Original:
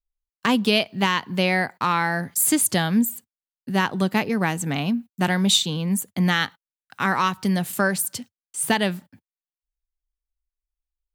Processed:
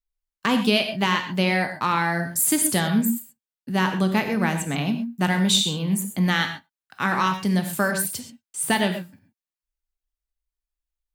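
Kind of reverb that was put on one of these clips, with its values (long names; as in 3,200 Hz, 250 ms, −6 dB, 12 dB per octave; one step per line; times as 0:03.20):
reverb whose tail is shaped and stops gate 150 ms flat, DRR 5.5 dB
level −1.5 dB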